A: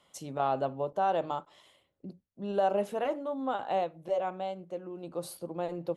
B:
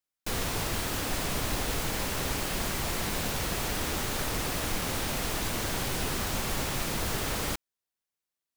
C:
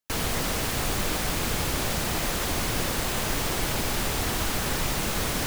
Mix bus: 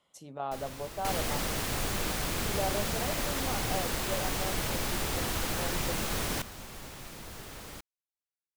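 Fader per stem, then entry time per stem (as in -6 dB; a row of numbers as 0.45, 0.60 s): -6.5, -13.5, -5.0 dB; 0.00, 0.25, 0.95 s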